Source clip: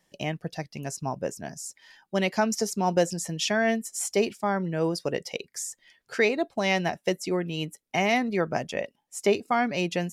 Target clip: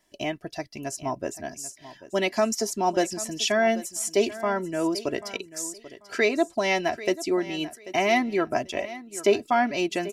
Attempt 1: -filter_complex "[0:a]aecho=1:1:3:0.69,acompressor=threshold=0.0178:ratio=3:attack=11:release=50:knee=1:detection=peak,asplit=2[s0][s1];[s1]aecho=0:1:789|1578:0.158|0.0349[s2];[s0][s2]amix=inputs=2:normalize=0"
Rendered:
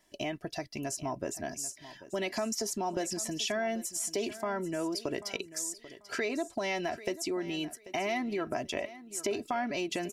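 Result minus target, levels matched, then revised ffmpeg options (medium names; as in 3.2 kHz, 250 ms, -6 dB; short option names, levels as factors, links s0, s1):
compression: peak gain reduction +14 dB
-filter_complex "[0:a]aecho=1:1:3:0.69,asplit=2[s0][s1];[s1]aecho=0:1:789|1578:0.158|0.0349[s2];[s0][s2]amix=inputs=2:normalize=0"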